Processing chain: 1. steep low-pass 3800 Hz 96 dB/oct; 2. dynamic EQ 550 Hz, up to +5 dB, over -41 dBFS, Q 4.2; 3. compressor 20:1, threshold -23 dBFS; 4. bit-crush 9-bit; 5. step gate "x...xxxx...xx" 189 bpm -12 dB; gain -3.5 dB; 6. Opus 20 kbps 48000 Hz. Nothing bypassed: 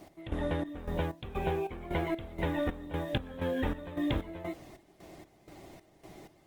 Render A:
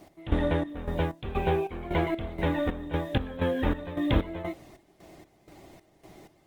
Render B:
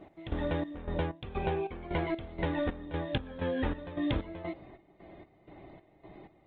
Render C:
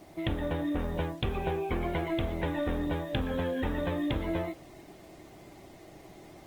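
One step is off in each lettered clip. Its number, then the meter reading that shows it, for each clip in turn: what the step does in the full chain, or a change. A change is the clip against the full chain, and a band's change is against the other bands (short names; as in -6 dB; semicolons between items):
3, mean gain reduction 3.5 dB; 4, distortion -30 dB; 5, momentary loudness spread change -2 LU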